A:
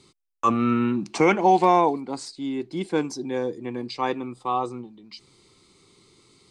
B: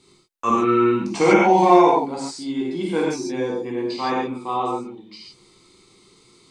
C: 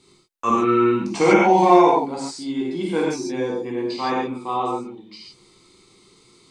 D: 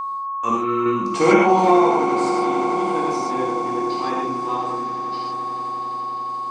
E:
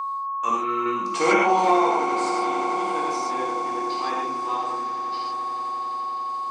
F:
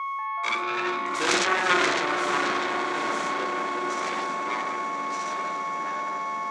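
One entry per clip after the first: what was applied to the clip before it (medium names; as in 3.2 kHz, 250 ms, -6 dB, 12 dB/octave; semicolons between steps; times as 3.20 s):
gated-style reverb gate 170 ms flat, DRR -5.5 dB; trim -2.5 dB
no audible change
random-step tremolo; whistle 1.1 kHz -24 dBFS; echo with a slow build-up 87 ms, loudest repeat 8, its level -17 dB
high-pass 730 Hz 6 dB/octave
self-modulated delay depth 0.67 ms; ever faster or slower copies 187 ms, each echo -4 st, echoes 3, each echo -6 dB; cabinet simulation 230–7800 Hz, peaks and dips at 250 Hz -7 dB, 480 Hz -5 dB, 800 Hz -7 dB, 1.8 kHz -4 dB, 2.9 kHz -5 dB, 4.9 kHz -4 dB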